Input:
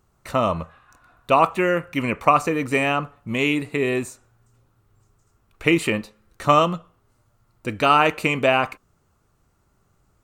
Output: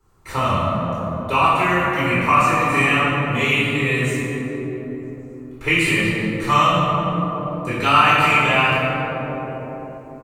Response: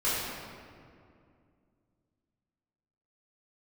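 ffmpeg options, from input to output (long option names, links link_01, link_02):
-filter_complex "[0:a]asplit=2[link_01][link_02];[link_02]adelay=397,lowpass=frequency=1700:poles=1,volume=-13dB,asplit=2[link_03][link_04];[link_04]adelay=397,lowpass=frequency=1700:poles=1,volume=0.45,asplit=2[link_05][link_06];[link_06]adelay=397,lowpass=frequency=1700:poles=1,volume=0.45,asplit=2[link_07][link_08];[link_08]adelay=397,lowpass=frequency=1700:poles=1,volume=0.45[link_09];[link_01][link_03][link_05][link_07][link_09]amix=inputs=5:normalize=0[link_10];[1:a]atrim=start_sample=2205,asetrate=36162,aresample=44100[link_11];[link_10][link_11]afir=irnorm=-1:irlink=0,acrossover=split=190|1100|5500[link_12][link_13][link_14][link_15];[link_13]acompressor=threshold=-21dB:ratio=6[link_16];[link_12][link_16][link_14][link_15]amix=inputs=4:normalize=0,volume=-4.5dB"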